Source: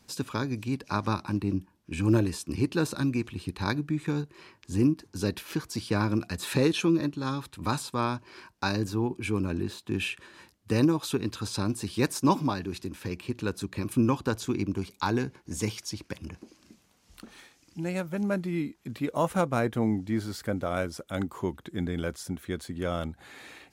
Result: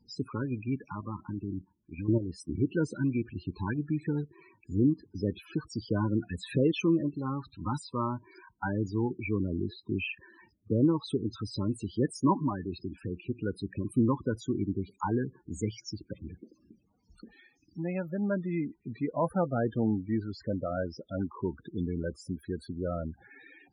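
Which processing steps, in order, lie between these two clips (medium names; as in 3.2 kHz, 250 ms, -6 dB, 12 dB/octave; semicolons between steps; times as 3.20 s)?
0.90–2.38 s: level held to a coarse grid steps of 11 dB; loudest bins only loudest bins 16; trim -1.5 dB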